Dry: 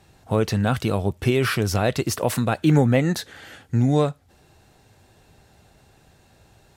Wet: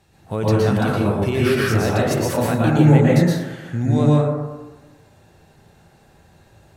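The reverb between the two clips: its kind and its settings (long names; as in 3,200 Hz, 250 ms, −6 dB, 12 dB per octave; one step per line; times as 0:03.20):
dense smooth reverb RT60 1.2 s, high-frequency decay 0.35×, pre-delay 105 ms, DRR −6 dB
level −4 dB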